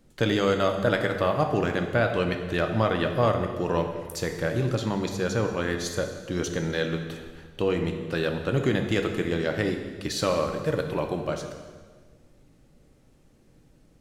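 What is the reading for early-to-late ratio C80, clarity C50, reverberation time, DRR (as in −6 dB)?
8.0 dB, 6.5 dB, 1.6 s, 4.0 dB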